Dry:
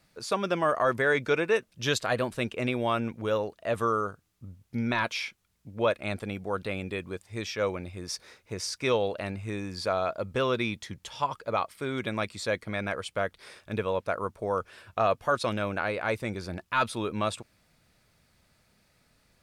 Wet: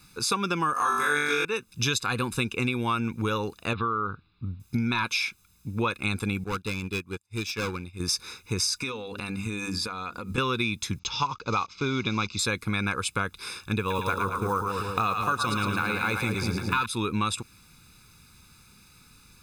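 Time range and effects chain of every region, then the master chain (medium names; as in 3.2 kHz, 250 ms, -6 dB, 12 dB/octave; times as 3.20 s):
0.73–1.45 s: high-pass 430 Hz 6 dB/octave + treble shelf 4.8 kHz +11 dB + flutter echo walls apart 3.5 m, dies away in 1.2 s
3.73–4.60 s: steep low-pass 4.4 kHz 72 dB/octave + compression 2:1, threshold -34 dBFS
6.44–8.00 s: hard clipper -30.5 dBFS + upward expansion 2.5:1, over -52 dBFS
8.73–10.38 s: hum notches 50/100/150/200/250/300/350/400 Hz + comb 4.1 ms, depth 37% + compression 16:1, threshold -36 dBFS
10.99–12.39 s: block-companded coder 5-bit + steep low-pass 6.6 kHz 72 dB/octave + peaking EQ 1.7 kHz -8.5 dB 0.27 oct
13.79–16.86 s: block-companded coder 7-bit + two-band feedback delay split 700 Hz, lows 193 ms, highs 110 ms, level -5 dB
whole clip: treble shelf 3.4 kHz +7 dB; comb 0.8 ms, depth 99%; compression, threshold -29 dBFS; trim +5.5 dB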